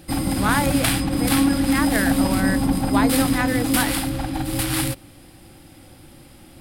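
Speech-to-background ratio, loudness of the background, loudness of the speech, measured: -5.0 dB, -21.0 LUFS, -26.0 LUFS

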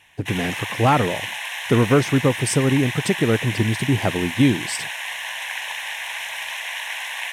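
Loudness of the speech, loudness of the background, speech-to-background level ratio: -21.0 LUFS, -27.5 LUFS, 6.5 dB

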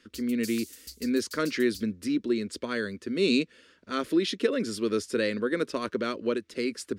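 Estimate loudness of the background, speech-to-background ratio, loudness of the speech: -43.5 LUFS, 14.5 dB, -29.0 LUFS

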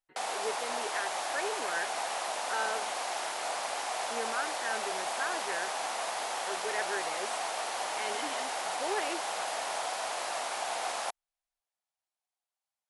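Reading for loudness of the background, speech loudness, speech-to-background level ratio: -34.0 LUFS, -38.5 LUFS, -4.5 dB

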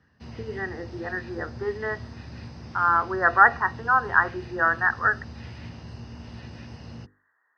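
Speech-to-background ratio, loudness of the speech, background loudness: 18.0 dB, -23.5 LUFS, -41.5 LUFS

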